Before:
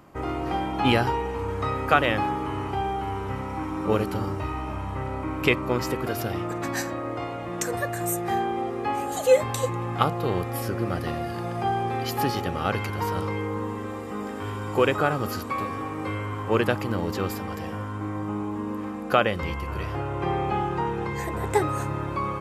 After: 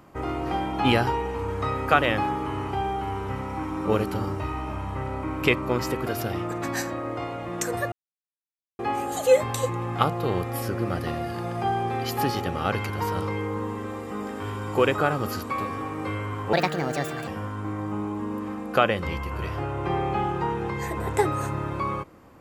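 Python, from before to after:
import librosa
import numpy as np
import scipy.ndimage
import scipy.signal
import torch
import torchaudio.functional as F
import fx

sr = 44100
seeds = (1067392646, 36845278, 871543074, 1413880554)

y = fx.edit(x, sr, fx.silence(start_s=7.92, length_s=0.87),
    fx.speed_span(start_s=16.53, length_s=1.11, speed=1.49), tone=tone)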